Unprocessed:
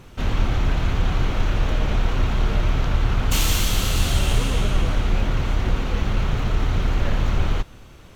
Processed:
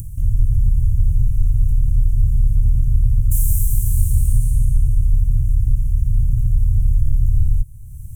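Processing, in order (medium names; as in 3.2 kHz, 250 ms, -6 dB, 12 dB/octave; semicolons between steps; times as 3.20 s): elliptic band-stop 120–9200 Hz, stop band 40 dB; in parallel at -2 dB: peak limiter -19 dBFS, peak gain reduction 10.5 dB; on the sum: upward compressor, threshold -23 dBFS; trim +3 dB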